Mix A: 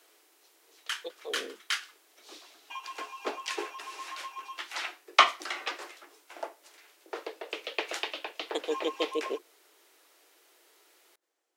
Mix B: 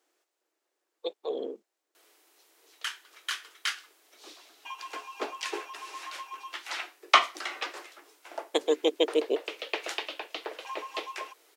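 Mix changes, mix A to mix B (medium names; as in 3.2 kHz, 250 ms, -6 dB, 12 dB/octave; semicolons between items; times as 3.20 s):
speech +6.5 dB; background: entry +1.95 s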